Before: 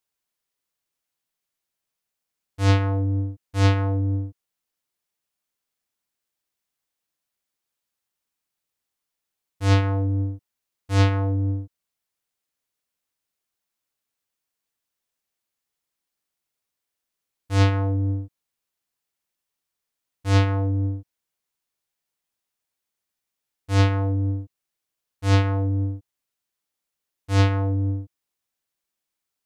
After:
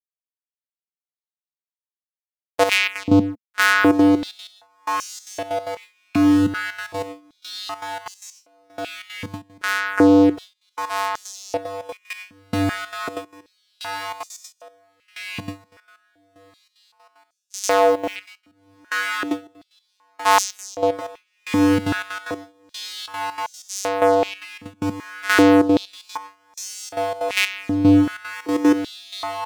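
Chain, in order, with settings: 17.59–18.16 s: tilt EQ +3 dB/octave; waveshaping leveller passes 5; echo that smears into a reverb 1368 ms, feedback 72%, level -9.5 dB; trance gate "x.xx.x.x.....xxx" 188 bpm -12 dB; gate with hold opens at -18 dBFS; level rider gain up to 7 dB; saturation -3 dBFS, distortion -20 dB; step-sequenced high-pass 2.6 Hz 220–6200 Hz; trim -2 dB

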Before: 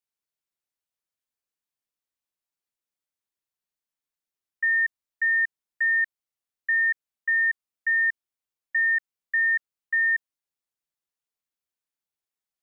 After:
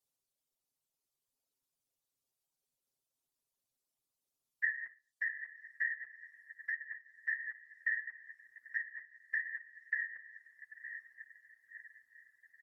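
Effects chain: low-pass that closes with the level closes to 1.6 kHz, closed at -22.5 dBFS; peaking EQ 1.8 kHz -14 dB 1.4 oct; echo that smears into a reverb 1073 ms, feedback 47%, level -9 dB; reverberation RT60 0.35 s, pre-delay 4 ms, DRR 9.5 dB; reverb removal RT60 1.3 s; whisper effect; comb 7.5 ms, depth 67%; trim +5 dB

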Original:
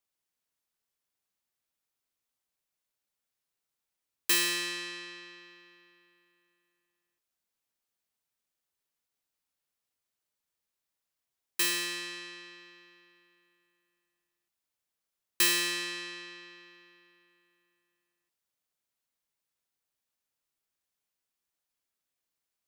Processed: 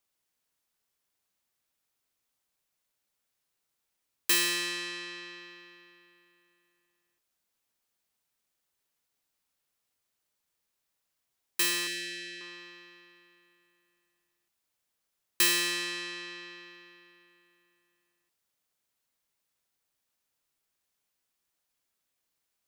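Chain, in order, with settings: 11.87–12.41 s: elliptic band-stop 500–1600 Hz, stop band 60 dB; in parallel at -2.5 dB: compression, threshold -45 dBFS, peak gain reduction 21.5 dB

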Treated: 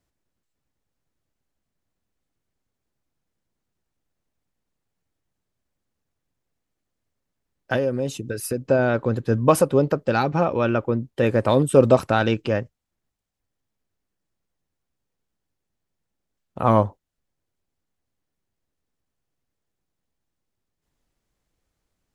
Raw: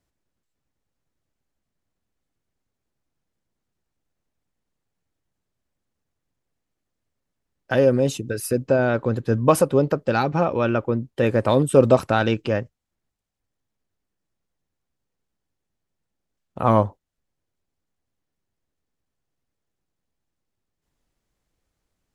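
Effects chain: 7.76–8.65 s: compression 2:1, threshold -25 dBFS, peak gain reduction 7.5 dB

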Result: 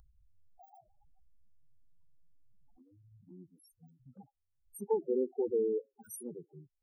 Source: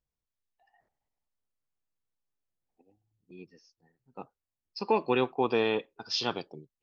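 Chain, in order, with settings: bit-reversed sample order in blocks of 16 samples; loudest bins only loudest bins 4; upward compressor, threshold -42 dBFS; touch-sensitive phaser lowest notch 390 Hz, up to 1.3 kHz, full sweep at -31 dBFS

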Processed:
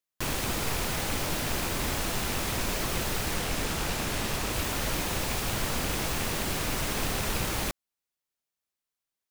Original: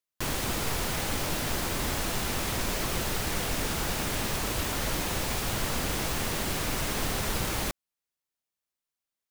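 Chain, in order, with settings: rattle on loud lows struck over -31 dBFS, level -27 dBFS; 3.36–4.53 s: loudspeaker Doppler distortion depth 0.24 ms

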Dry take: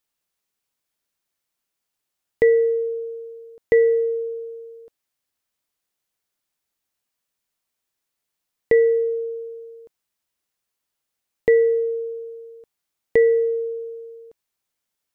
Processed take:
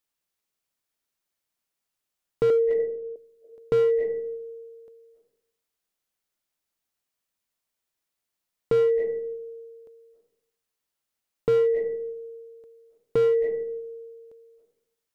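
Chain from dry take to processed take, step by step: 2.50–3.16 s: low-pass 1.2 kHz 24 dB/octave; reverberation RT60 0.70 s, pre-delay 247 ms, DRR 8.5 dB; slew-rate limiter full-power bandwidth 90 Hz; trim -3.5 dB

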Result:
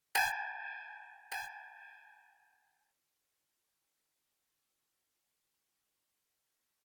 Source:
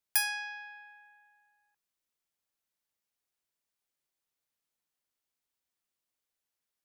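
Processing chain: low-pass that closes with the level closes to 1.4 kHz, closed at -37.5 dBFS; dynamic bell 1.1 kHz, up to -4 dB, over -55 dBFS, Q 1.3; in parallel at -4 dB: word length cut 6-bit, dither none; on the sum: whisper effect; doubling 20 ms -7.5 dB; delay 1166 ms -10.5 dB; on a send at -12 dB: reverberation RT60 0.10 s, pre-delay 3 ms; on the sum: trim +4 dB

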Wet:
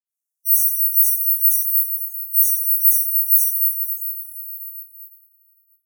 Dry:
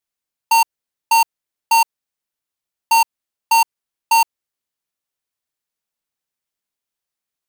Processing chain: compression, threshold -16 dBFS, peak gain reduction 3.5 dB; reverberation RT60 3.5 s, pre-delay 71 ms; tape speed +28%; level rider gain up to 12 dB; careless resampling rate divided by 3×, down none, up zero stuff; inverse Chebyshev high-pass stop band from 2.5 kHz, stop band 50 dB; spectral gate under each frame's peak -15 dB strong; detune thickener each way 60 cents; trim -2.5 dB

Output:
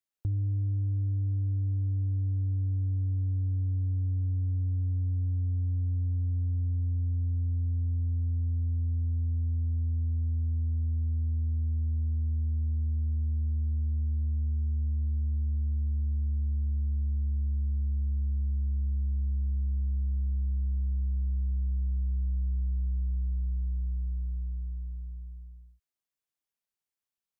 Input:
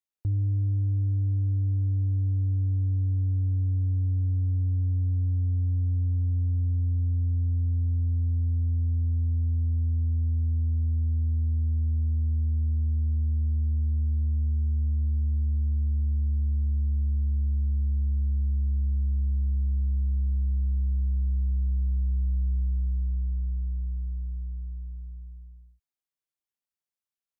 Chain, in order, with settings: compression, threshold -27 dBFS, peak gain reduction 3.5 dB

